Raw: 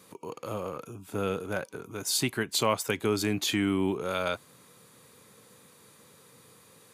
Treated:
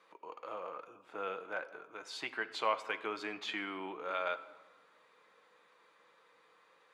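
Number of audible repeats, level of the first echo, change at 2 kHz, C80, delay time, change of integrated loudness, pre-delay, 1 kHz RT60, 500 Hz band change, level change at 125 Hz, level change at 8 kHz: none, none, -4.5 dB, 16.0 dB, none, -9.5 dB, 6 ms, 1.4 s, -10.0 dB, under -25 dB, -24.0 dB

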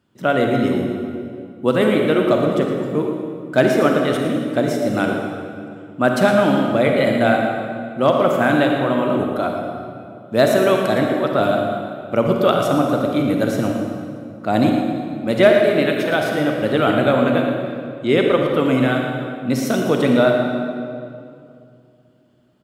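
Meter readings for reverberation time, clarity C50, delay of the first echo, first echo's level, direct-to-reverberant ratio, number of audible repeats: 2.4 s, 1.5 dB, 0.114 s, -10.0 dB, 1.0 dB, 1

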